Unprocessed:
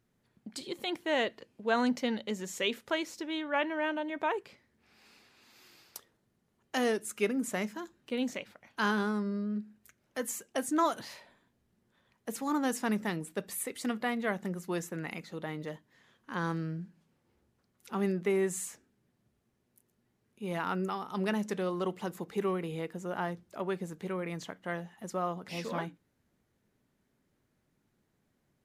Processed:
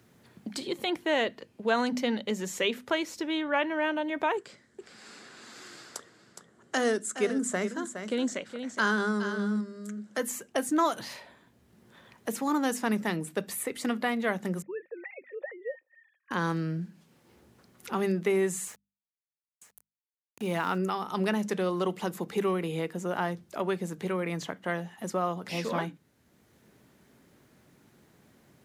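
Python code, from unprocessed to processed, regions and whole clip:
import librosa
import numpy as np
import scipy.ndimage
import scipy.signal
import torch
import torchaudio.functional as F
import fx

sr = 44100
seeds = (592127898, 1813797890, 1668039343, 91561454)

y = fx.chain(x, sr, fx.cabinet(low_hz=140.0, low_slope=12, high_hz=9900.0, hz=(880.0, 1500.0, 2500.0, 7600.0), db=(-5, 4, -8, 9)),
    fx.echo_single(ms=415, db=-11.5), at=(4.37, 10.18))
y = fx.chain(y, sr, fx.sine_speech(),
    fx.formant_cascade(vowel='e'), at=(14.62, 16.31))
y = fx.chain(y, sr, fx.sample_gate(floor_db=-51.5),
    fx.echo_single(ms=954, db=-21.5), at=(18.66, 20.78))
y = scipy.signal.sosfilt(scipy.signal.butter(2, 53.0, 'highpass', fs=sr, output='sos'), y)
y = fx.hum_notches(y, sr, base_hz=50, count=5)
y = fx.band_squash(y, sr, depth_pct=40)
y = y * librosa.db_to_amplitude(4.0)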